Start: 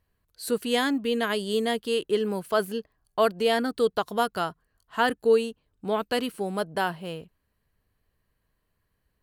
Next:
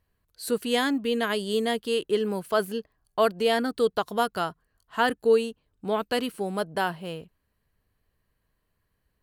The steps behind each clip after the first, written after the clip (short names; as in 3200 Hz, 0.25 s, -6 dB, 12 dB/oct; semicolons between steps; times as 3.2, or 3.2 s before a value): nothing audible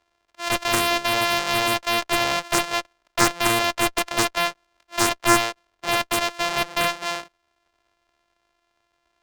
sample sorter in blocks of 128 samples; three-band isolator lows -20 dB, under 490 Hz, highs -14 dB, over 7000 Hz; added harmonics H 6 -7 dB, 7 -6 dB, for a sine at -7.5 dBFS; gain +3 dB